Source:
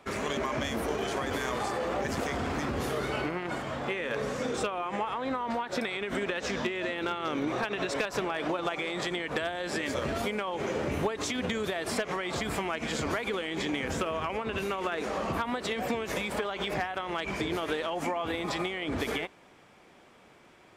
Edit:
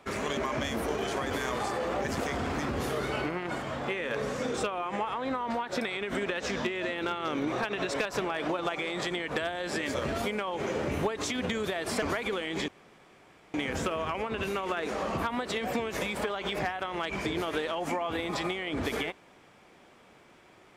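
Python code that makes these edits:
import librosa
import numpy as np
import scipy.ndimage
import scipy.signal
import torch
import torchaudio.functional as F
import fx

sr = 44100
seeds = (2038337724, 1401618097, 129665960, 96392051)

y = fx.edit(x, sr, fx.cut(start_s=12.02, length_s=1.01),
    fx.insert_room_tone(at_s=13.69, length_s=0.86), tone=tone)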